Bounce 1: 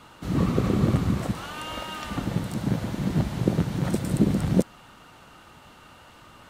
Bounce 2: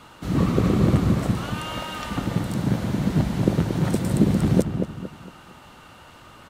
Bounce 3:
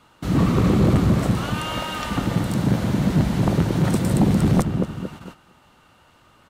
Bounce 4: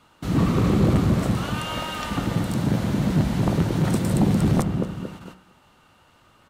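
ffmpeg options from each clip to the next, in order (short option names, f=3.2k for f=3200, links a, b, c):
-filter_complex "[0:a]asplit=2[a][b];[b]adelay=229,lowpass=f=1.5k:p=1,volume=-6.5dB,asplit=2[c][d];[d]adelay=229,lowpass=f=1.5k:p=1,volume=0.38,asplit=2[e][f];[f]adelay=229,lowpass=f=1.5k:p=1,volume=0.38,asplit=2[g][h];[h]adelay=229,lowpass=f=1.5k:p=1,volume=0.38[i];[a][c][e][g][i]amix=inputs=5:normalize=0,volume=2.5dB"
-af "agate=range=-12dB:threshold=-41dB:ratio=16:detection=peak,aeval=exprs='0.75*sin(PI/2*2.51*val(0)/0.75)':c=same,volume=-8dB"
-af "bandreject=f=62:t=h:w=4,bandreject=f=124:t=h:w=4,bandreject=f=186:t=h:w=4,bandreject=f=248:t=h:w=4,bandreject=f=310:t=h:w=4,bandreject=f=372:t=h:w=4,bandreject=f=434:t=h:w=4,bandreject=f=496:t=h:w=4,bandreject=f=558:t=h:w=4,bandreject=f=620:t=h:w=4,bandreject=f=682:t=h:w=4,bandreject=f=744:t=h:w=4,bandreject=f=806:t=h:w=4,bandreject=f=868:t=h:w=4,bandreject=f=930:t=h:w=4,bandreject=f=992:t=h:w=4,bandreject=f=1.054k:t=h:w=4,bandreject=f=1.116k:t=h:w=4,bandreject=f=1.178k:t=h:w=4,bandreject=f=1.24k:t=h:w=4,bandreject=f=1.302k:t=h:w=4,bandreject=f=1.364k:t=h:w=4,bandreject=f=1.426k:t=h:w=4,bandreject=f=1.488k:t=h:w=4,bandreject=f=1.55k:t=h:w=4,bandreject=f=1.612k:t=h:w=4,bandreject=f=1.674k:t=h:w=4,bandreject=f=1.736k:t=h:w=4,bandreject=f=1.798k:t=h:w=4,bandreject=f=1.86k:t=h:w=4,bandreject=f=1.922k:t=h:w=4,bandreject=f=1.984k:t=h:w=4,bandreject=f=2.046k:t=h:w=4,bandreject=f=2.108k:t=h:w=4,bandreject=f=2.17k:t=h:w=4,bandreject=f=2.232k:t=h:w=4,bandreject=f=2.294k:t=h:w=4,volume=-1.5dB"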